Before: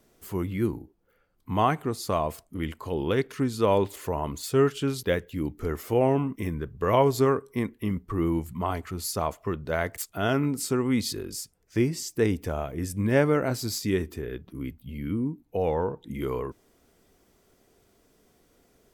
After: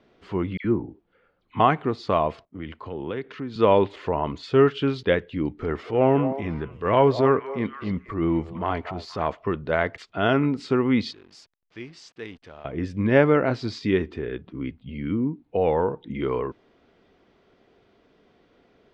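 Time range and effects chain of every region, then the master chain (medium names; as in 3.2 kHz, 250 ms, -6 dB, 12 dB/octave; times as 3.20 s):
0.57–1.60 s: low-pass that closes with the level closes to 2.5 kHz, closed at -25 dBFS + phase dispersion lows, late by 75 ms, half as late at 1.9 kHz
2.45–3.56 s: compression 4:1, threshold -33 dBFS + treble shelf 5.9 kHz -6 dB + three bands expanded up and down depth 70%
5.62–9.35 s: transient shaper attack -8 dB, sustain +1 dB + repeats whose band climbs or falls 236 ms, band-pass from 630 Hz, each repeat 1.4 oct, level -8 dB
11.11–12.65 s: pre-emphasis filter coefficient 0.9 + hysteresis with a dead band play -48.5 dBFS
whole clip: low-pass 3.8 kHz 24 dB/octave; bass shelf 84 Hz -11 dB; trim +5 dB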